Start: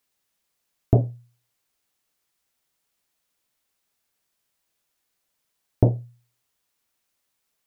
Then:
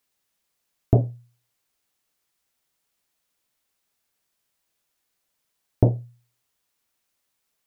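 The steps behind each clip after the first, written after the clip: no audible change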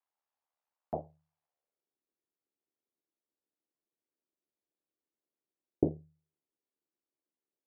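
ring modulator 37 Hz; band-pass sweep 850 Hz -> 340 Hz, 1.39–1.95 s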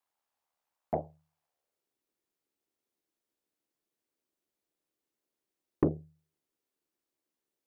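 saturation -20.5 dBFS, distortion -10 dB; trim +5 dB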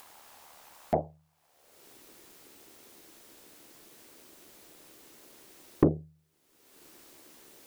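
upward compressor, threshold -36 dBFS; trim +4.5 dB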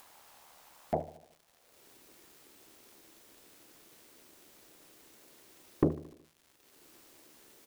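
crackle 270 per s -46 dBFS; feedback delay 74 ms, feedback 56%, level -16.5 dB; trim -4.5 dB

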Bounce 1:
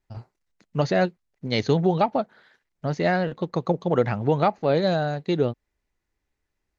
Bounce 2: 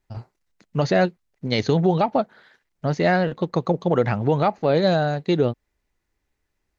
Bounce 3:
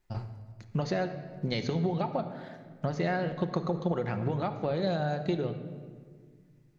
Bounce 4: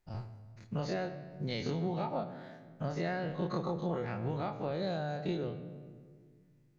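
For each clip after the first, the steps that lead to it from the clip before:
loudness maximiser +11 dB; trim -7.5 dB
compression 10:1, threshold -28 dBFS, peak gain reduction 14.5 dB; simulated room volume 2300 m³, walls mixed, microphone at 0.93 m
every event in the spectrogram widened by 60 ms; trim -8.5 dB

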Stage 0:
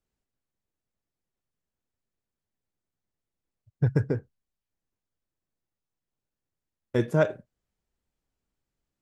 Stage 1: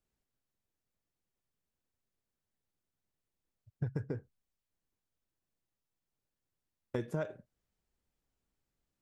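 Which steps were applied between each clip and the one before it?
compression 5:1, threshold -32 dBFS, peak gain reduction 14 dB; trim -1.5 dB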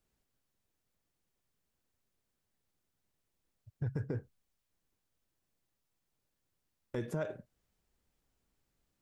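peak limiter -31.5 dBFS, peak gain reduction 10 dB; trim +5 dB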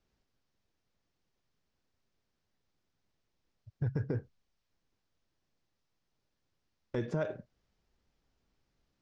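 Chebyshev low-pass 5.6 kHz, order 3; trim +3 dB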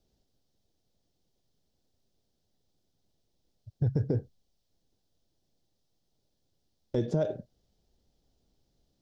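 high-order bell 1.6 kHz -12 dB; trim +5.5 dB

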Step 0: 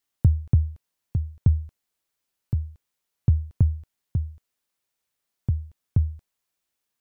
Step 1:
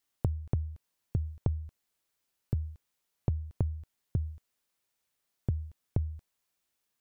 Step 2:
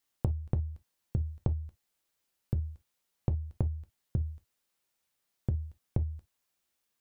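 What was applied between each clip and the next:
compression 12:1, threshold -26 dBFS, peak gain reduction 14 dB
gated-style reverb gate 80 ms falling, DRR 10.5 dB

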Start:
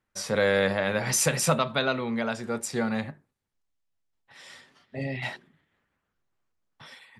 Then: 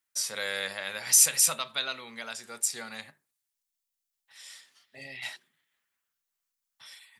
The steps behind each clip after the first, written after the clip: pre-emphasis filter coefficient 0.97; trim +6.5 dB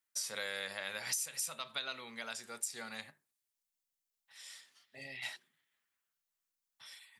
compression 12:1, threshold -30 dBFS, peak gain reduction 16 dB; trim -4 dB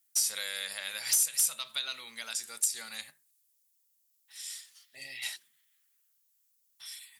pre-emphasis filter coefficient 0.9; sine folder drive 9 dB, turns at -19.5 dBFS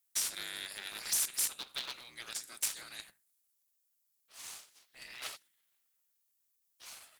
cycle switcher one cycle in 3, inverted; trim -5.5 dB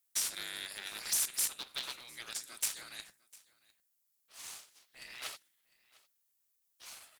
delay 702 ms -23.5 dB

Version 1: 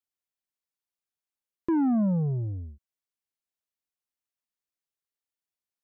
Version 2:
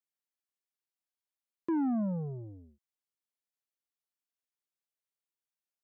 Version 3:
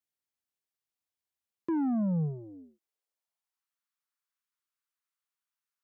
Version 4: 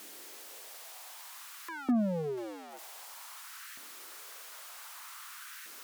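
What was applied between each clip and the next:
high-pass 190 Hz 12 dB/octave; trim -5 dB
high-pass sweep 80 Hz -> 1.2 kHz, 1.79–3.67 s
jump at every zero crossing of -42.5 dBFS; LFO high-pass saw up 0.53 Hz 280–1700 Hz; Chebyshev shaper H 5 -18 dB, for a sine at -18 dBFS; trim -1.5 dB

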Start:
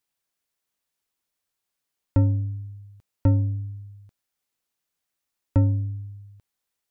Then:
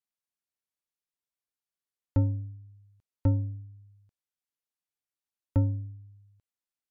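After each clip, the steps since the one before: low-pass that closes with the level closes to 1.2 kHz, closed at -20 dBFS; upward expansion 1.5:1, over -33 dBFS; trim -4.5 dB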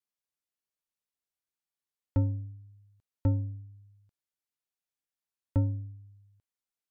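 vibrato 0.78 Hz 8.5 cents; trim -2 dB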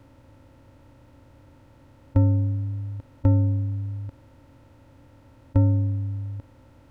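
spectral levelling over time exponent 0.4; trim +6.5 dB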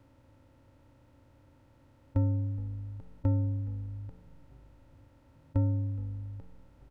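frequency-shifting echo 419 ms, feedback 61%, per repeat -51 Hz, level -21.5 dB; trim -8.5 dB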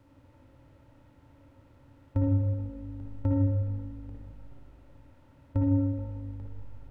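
reverberation RT60 1.6 s, pre-delay 53 ms, DRR -1 dB

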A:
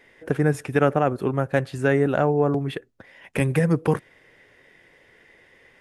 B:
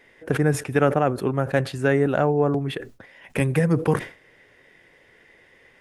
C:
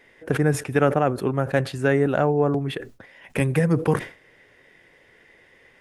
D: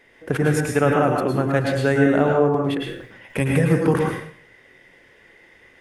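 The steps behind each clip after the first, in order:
decay stretcher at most 150 dB/s
no audible change
plate-style reverb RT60 0.55 s, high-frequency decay 0.9×, pre-delay 95 ms, DRR 0 dB

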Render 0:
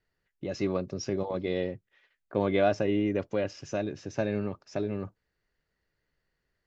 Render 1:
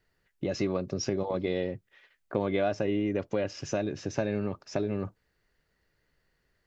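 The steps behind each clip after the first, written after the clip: compression 3:1, threshold -33 dBFS, peak gain reduction 10.5 dB; trim +6 dB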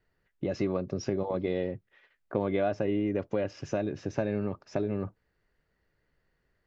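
treble shelf 3.6 kHz -11.5 dB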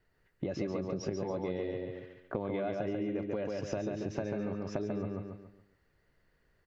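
on a send: feedback delay 140 ms, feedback 36%, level -4 dB; on the sum: compression 4:1, threshold -34 dBFS, peak gain reduction 10 dB; trim +1.5 dB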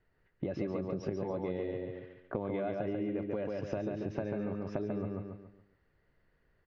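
distance through air 190 m

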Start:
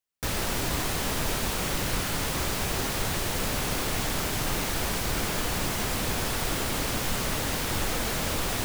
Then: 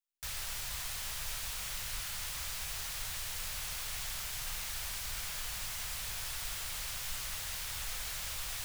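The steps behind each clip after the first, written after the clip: amplifier tone stack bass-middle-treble 10-0-10; trim -6.5 dB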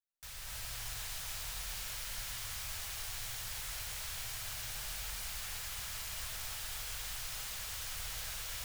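two-band feedback delay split 920 Hz, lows 114 ms, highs 402 ms, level -6 dB; gated-style reverb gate 330 ms rising, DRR -2.5 dB; trim -8 dB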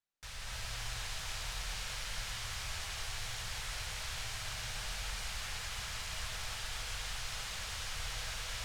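distance through air 62 m; trim +4.5 dB

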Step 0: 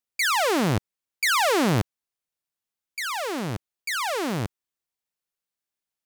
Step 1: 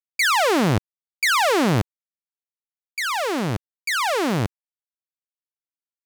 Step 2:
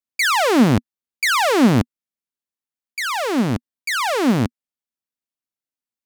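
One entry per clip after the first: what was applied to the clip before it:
treble shelf 5.9 kHz -4 dB; peak limiter -19 dBFS, peak gain reduction 3 dB; bit crusher 11-bit; trim +5.5 dB
peaking EQ 240 Hz +10 dB 0.53 oct; trim +1 dB

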